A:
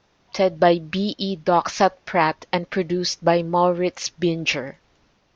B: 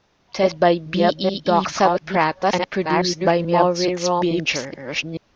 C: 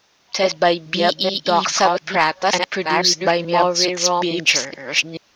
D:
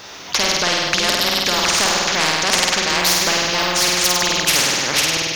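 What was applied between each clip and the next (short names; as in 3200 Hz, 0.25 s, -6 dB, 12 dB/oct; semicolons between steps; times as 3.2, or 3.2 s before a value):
reverse delay 0.431 s, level -2.5 dB
tilt +3 dB/oct; in parallel at -4 dB: soft clip -11 dBFS, distortion -14 dB; on the sum: gain -1.5 dB
flutter echo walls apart 8.6 m, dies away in 0.79 s; spectral compressor 4:1; gain -1 dB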